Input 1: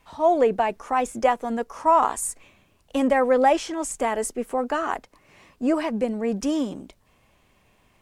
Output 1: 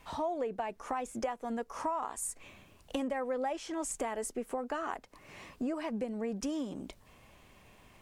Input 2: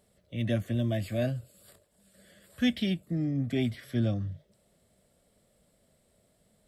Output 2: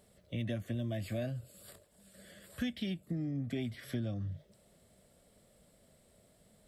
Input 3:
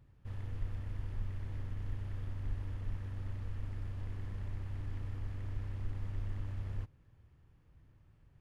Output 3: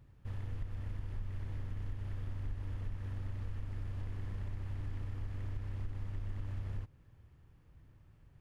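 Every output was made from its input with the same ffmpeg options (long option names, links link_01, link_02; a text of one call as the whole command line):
ffmpeg -i in.wav -af "acompressor=threshold=-37dB:ratio=5,volume=2.5dB" out.wav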